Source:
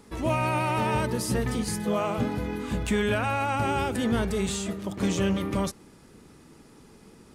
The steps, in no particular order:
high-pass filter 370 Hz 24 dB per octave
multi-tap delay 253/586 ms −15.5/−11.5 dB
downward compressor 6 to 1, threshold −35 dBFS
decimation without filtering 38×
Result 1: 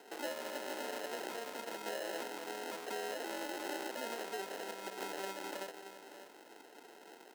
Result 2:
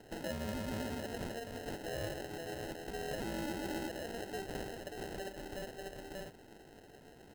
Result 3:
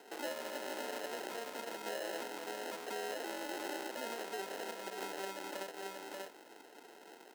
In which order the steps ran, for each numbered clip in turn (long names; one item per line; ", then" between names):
downward compressor, then multi-tap delay, then decimation without filtering, then high-pass filter
multi-tap delay, then downward compressor, then high-pass filter, then decimation without filtering
multi-tap delay, then decimation without filtering, then downward compressor, then high-pass filter